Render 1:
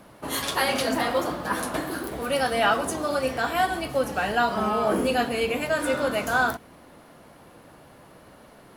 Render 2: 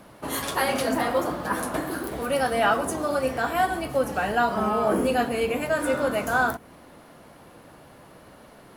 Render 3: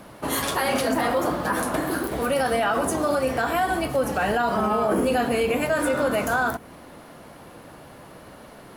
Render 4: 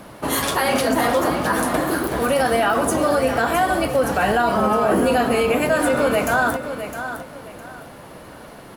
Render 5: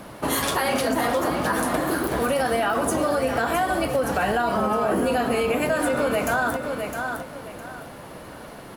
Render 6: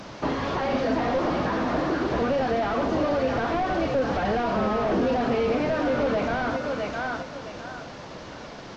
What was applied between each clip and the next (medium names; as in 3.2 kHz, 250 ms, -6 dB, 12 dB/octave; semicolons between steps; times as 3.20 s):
dynamic bell 3.9 kHz, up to -6 dB, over -42 dBFS, Q 0.76; trim +1 dB
peak limiter -18.5 dBFS, peak gain reduction 8.5 dB; trim +4.5 dB
feedback delay 660 ms, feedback 27%, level -10 dB; trim +4 dB
compression 2.5:1, threshold -21 dBFS, peak gain reduction 5.5 dB
one-bit delta coder 32 kbps, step -39.5 dBFS